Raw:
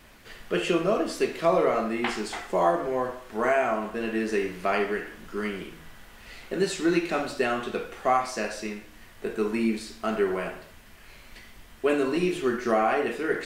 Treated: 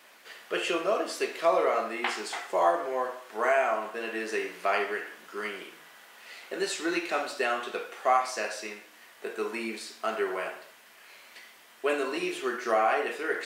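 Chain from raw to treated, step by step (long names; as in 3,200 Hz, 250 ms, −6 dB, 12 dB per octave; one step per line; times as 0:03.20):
high-pass filter 500 Hz 12 dB per octave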